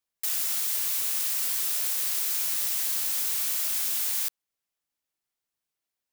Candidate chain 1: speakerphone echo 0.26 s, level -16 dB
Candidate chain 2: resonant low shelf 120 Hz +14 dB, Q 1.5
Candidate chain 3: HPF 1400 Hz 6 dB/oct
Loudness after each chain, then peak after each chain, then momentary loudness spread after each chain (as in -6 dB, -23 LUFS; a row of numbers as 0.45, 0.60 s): -24.5, -24.5, -25.0 LUFS; -13.5, -13.5, -14.0 dBFS; 1, 1, 1 LU